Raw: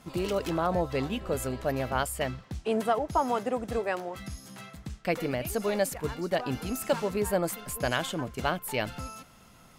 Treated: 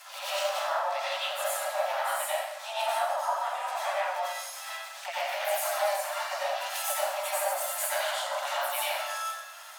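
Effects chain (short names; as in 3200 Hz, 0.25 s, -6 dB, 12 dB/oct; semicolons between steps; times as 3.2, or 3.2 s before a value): Chebyshev high-pass 560 Hz, order 10; compressor 16:1, threshold -35 dBFS, peak gain reduction 14 dB; harmoniser +4 st -7 dB, +5 st -8 dB; plate-style reverb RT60 0.96 s, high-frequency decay 0.9×, pre-delay 75 ms, DRR -8 dB; mismatched tape noise reduction encoder only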